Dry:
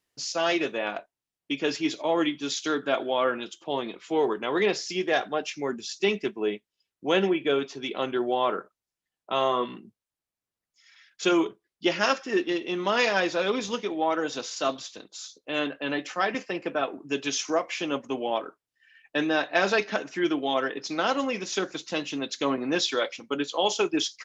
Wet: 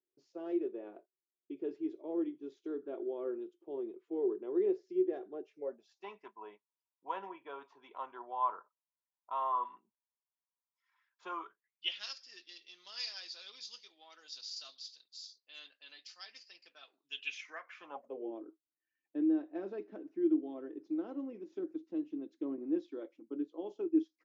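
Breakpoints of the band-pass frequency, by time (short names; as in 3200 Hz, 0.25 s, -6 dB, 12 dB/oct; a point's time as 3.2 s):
band-pass, Q 9
5.44 s 370 Hz
6.08 s 980 Hz
11.29 s 980 Hz
12.12 s 4700 Hz
16.88 s 4700 Hz
17.77 s 1300 Hz
18.31 s 320 Hz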